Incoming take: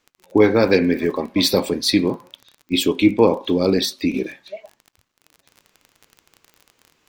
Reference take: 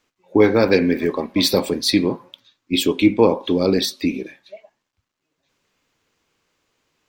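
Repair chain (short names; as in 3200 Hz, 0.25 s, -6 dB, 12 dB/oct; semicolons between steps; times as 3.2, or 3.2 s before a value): de-click; gain 0 dB, from 4.14 s -5.5 dB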